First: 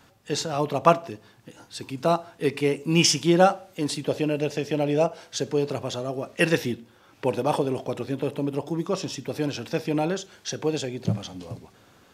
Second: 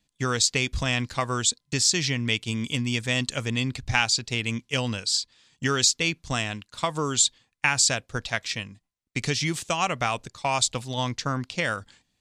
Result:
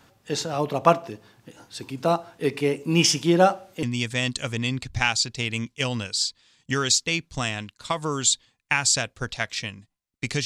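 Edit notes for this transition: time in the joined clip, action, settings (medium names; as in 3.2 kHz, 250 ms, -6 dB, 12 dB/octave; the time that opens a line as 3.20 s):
first
3.83 s: go over to second from 2.76 s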